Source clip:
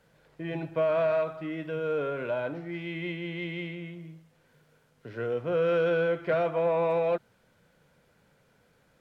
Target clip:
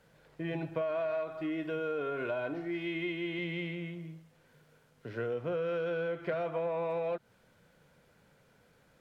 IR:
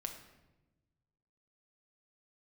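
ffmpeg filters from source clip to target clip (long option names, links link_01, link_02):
-filter_complex "[0:a]asettb=1/sr,asplit=3[link_01][link_02][link_03];[link_01]atrim=end=0.814[link_04];[link_02]atrim=start=0.81:end=3.39,asetpts=PTS-STARTPTS,afade=type=in:duration=0.004:curve=qsin,afade=type=out:start_time=2.576:duration=0.004:curve=qsin,aecho=1:1:2.8:0.5,atrim=end_sample=113778[link_05];[link_03]atrim=start=3.386[link_06];[link_04][link_05]acrossfade=duration=0.004:curve1=hsin:curve2=qsin[link_07];[link_07][link_06]acrossfade=duration=0.004:curve1=qsin:curve2=hsin,acompressor=threshold=-31dB:ratio=6"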